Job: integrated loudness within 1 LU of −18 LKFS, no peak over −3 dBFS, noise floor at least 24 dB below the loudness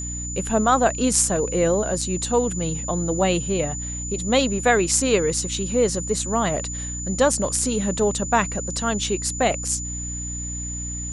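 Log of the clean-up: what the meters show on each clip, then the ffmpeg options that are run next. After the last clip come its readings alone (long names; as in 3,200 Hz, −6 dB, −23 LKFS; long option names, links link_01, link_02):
mains hum 60 Hz; hum harmonics up to 300 Hz; level of the hum −30 dBFS; interfering tone 7,000 Hz; level of the tone −30 dBFS; integrated loudness −22.0 LKFS; sample peak −3.5 dBFS; target loudness −18.0 LKFS
→ -af "bandreject=frequency=60:width_type=h:width=4,bandreject=frequency=120:width_type=h:width=4,bandreject=frequency=180:width_type=h:width=4,bandreject=frequency=240:width_type=h:width=4,bandreject=frequency=300:width_type=h:width=4"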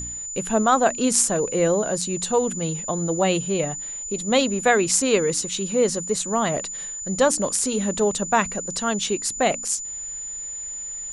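mains hum none found; interfering tone 7,000 Hz; level of the tone −30 dBFS
→ -af "bandreject=frequency=7000:width=30"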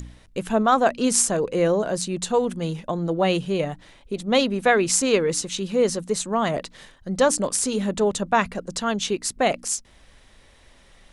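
interfering tone none found; integrated loudness −22.5 LKFS; sample peak −3.5 dBFS; target loudness −18.0 LKFS
→ -af "volume=4.5dB,alimiter=limit=-3dB:level=0:latency=1"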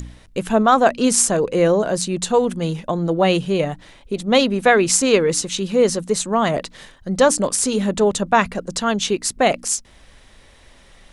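integrated loudness −18.5 LKFS; sample peak −3.0 dBFS; background noise floor −49 dBFS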